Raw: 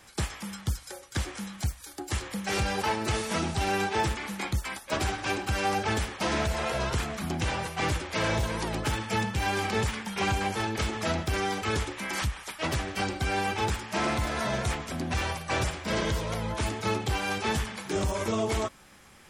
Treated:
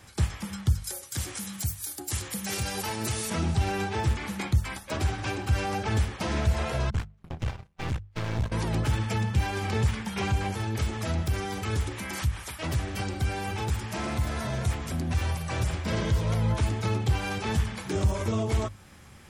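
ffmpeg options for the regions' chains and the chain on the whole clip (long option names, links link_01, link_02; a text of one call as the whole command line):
ffmpeg -i in.wav -filter_complex "[0:a]asettb=1/sr,asplit=3[link_01][link_02][link_03];[link_01]atrim=end=0.844[link_04];[link_02]atrim=start=0.84:end=3.3,asetpts=PTS-STARTPTS,afade=type=in:duration=0.004:curve=qsin,afade=type=out:start_time=2.456:duration=0.004:curve=qsin,highpass=96,aemphasis=mode=production:type=75fm[link_05];[link_03]atrim=start=3.296[link_06];[link_04][link_05]acrossfade=duration=0.004:curve1=hsin:curve2=qsin[link_07];[link_07][link_06]acrossfade=duration=0.004:curve1=qsin:curve2=hsin,asettb=1/sr,asplit=3[link_08][link_09][link_10];[link_08]atrim=end=6.904[link_11];[link_09]atrim=start=6.9:end=8.52,asetpts=PTS-STARTPTS,afade=type=in:duration=0.004:curve=qsin,afade=type=out:start_time=1.616:duration=0.004:curve=qsin,lowpass=frequency=3900:poles=1,agate=range=-36dB:threshold=-30dB:ratio=16:release=100:detection=peak,aeval=exprs='max(val(0),0)':channel_layout=same[link_12];[link_10]atrim=start=8.516[link_13];[link_11][link_12]acrossfade=duration=0.004:curve1=hsin:curve2=qsin[link_14];[link_14][link_13]acrossfade=duration=0.004:curve1=qsin:curve2=hsin,asettb=1/sr,asplit=3[link_15][link_16][link_17];[link_15]atrim=end=10.554[link_18];[link_16]atrim=start=10.55:end=15.7,asetpts=PTS-STARTPTS,afade=type=in:duration=0.004:curve=qsin,afade=type=out:start_time=5.146:duration=0.004:curve=qsin,highshelf=frequency=11000:gain=11.5,acompressor=threshold=-35dB:ratio=2:attack=3.2:release=140:knee=1:detection=peak,aecho=1:1:252:0.0891,atrim=end_sample=227115[link_19];[link_17]atrim=start=15.696[link_20];[link_18][link_19]acrossfade=duration=0.004:curve1=hsin:curve2=qsin[link_21];[link_21][link_20]acrossfade=duration=0.004:curve1=qsin:curve2=hsin,alimiter=limit=-22.5dB:level=0:latency=1:release=233,equalizer=frequency=94:width_type=o:width=1.9:gain=13.5,bandreject=frequency=50:width_type=h:width=6,bandreject=frequency=100:width_type=h:width=6,bandreject=frequency=150:width_type=h:width=6,bandreject=frequency=200:width_type=h:width=6" out.wav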